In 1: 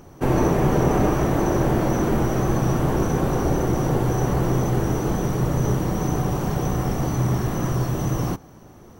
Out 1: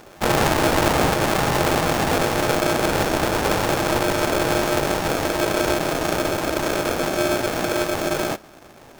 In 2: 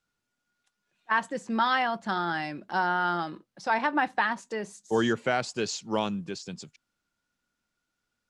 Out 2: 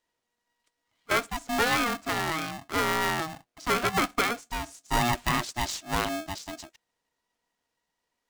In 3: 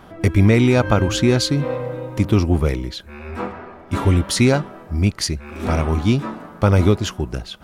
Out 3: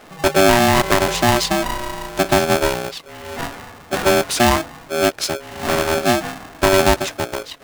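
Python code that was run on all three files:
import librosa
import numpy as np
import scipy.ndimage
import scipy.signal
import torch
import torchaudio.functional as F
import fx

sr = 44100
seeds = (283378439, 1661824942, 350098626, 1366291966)

y = x * np.sign(np.sin(2.0 * np.pi * 480.0 * np.arange(len(x)) / sr))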